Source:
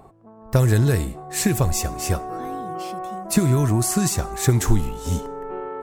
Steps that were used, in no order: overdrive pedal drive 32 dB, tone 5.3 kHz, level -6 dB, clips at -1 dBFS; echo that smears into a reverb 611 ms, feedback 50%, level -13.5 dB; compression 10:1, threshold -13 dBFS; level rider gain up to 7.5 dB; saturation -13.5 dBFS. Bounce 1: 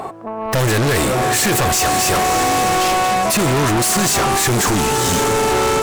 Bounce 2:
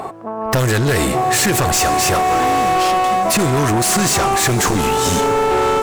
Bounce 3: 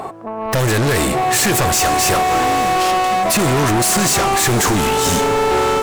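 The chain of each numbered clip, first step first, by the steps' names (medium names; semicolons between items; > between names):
echo that smears into a reverb > level rider > overdrive pedal > saturation > compression; level rider > saturation > overdrive pedal > echo that smears into a reverb > compression; overdrive pedal > compression > level rider > saturation > echo that smears into a reverb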